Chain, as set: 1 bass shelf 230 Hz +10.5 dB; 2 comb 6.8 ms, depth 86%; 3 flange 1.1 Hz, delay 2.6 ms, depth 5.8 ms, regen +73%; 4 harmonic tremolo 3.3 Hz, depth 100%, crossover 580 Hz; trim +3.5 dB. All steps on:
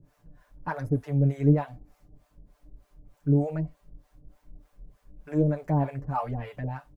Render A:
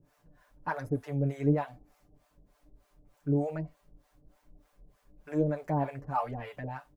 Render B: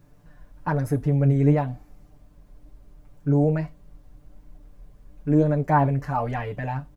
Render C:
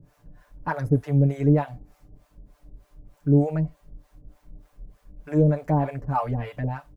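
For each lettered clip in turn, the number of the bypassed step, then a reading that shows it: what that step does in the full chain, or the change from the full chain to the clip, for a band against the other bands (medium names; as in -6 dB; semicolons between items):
1, 125 Hz band -6.0 dB; 4, loudness change +4.5 LU; 3, loudness change +3.5 LU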